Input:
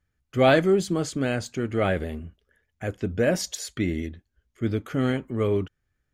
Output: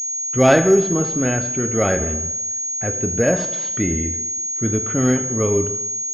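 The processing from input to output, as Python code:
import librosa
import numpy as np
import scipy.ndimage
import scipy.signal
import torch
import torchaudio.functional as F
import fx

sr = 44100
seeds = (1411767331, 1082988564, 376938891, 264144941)

y = fx.rev_double_slope(x, sr, seeds[0], early_s=0.89, late_s=2.7, knee_db=-27, drr_db=7.0)
y = fx.pwm(y, sr, carrier_hz=6600.0)
y = F.gain(torch.from_numpy(y), 4.0).numpy()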